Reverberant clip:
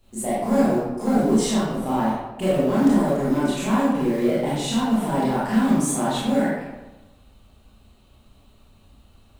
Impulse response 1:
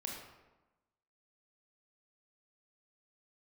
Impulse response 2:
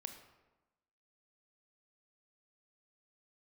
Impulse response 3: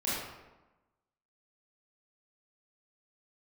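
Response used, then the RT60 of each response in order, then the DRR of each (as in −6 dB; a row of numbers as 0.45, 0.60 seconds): 3; 1.1, 1.1, 1.1 seconds; −1.0, 6.5, −9.5 decibels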